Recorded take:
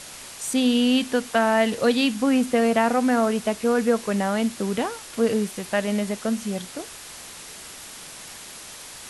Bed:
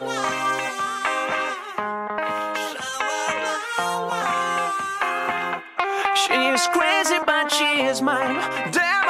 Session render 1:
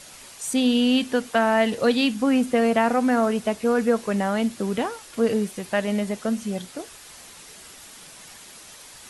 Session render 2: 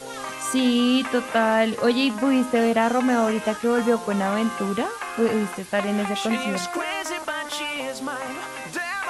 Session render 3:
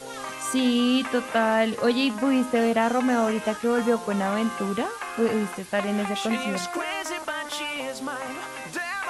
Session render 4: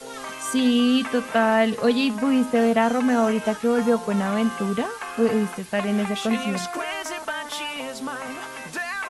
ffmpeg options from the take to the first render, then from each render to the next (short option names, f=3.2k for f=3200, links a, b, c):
-af "afftdn=nr=6:nf=-41"
-filter_complex "[1:a]volume=-9dB[a];[0:a][a]amix=inputs=2:normalize=0"
-af "volume=-2dB"
-af "adynamicequalizer=threshold=0.00562:dfrequency=130:dqfactor=1.7:tfrequency=130:tqfactor=1.7:attack=5:release=100:ratio=0.375:range=2.5:mode=boostabove:tftype=bell,aecho=1:1:4.5:0.35"